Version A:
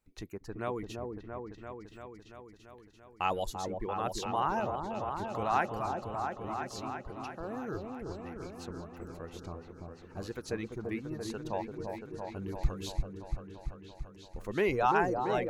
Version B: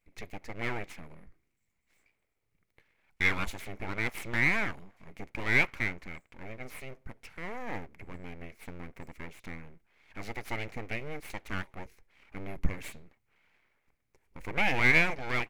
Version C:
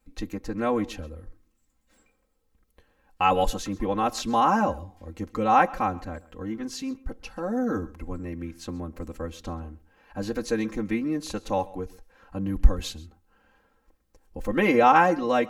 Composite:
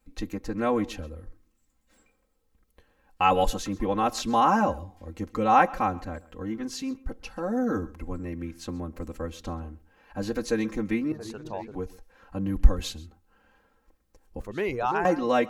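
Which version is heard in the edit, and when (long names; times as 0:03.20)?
C
0:11.12–0:11.75: punch in from A
0:14.41–0:15.05: punch in from A
not used: B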